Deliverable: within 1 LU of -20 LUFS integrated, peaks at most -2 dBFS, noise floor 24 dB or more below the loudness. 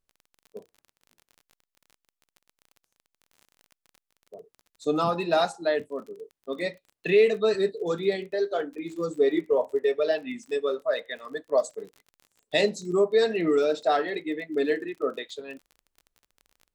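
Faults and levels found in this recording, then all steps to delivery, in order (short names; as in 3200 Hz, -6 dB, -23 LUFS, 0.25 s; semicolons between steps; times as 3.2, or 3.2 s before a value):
ticks 32/s; loudness -26.5 LUFS; peak -10.0 dBFS; loudness target -20.0 LUFS
-> de-click; gain +6.5 dB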